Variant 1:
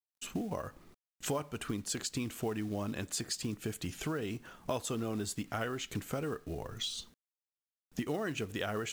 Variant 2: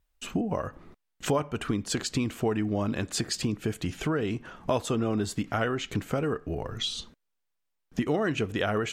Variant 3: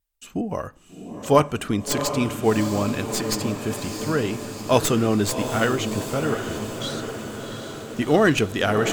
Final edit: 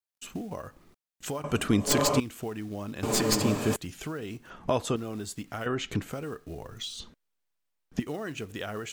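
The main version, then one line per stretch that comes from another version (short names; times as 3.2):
1
1.44–2.2 from 3
3.03–3.76 from 3
4.5–4.96 from 2
5.66–6.1 from 2
7–8 from 2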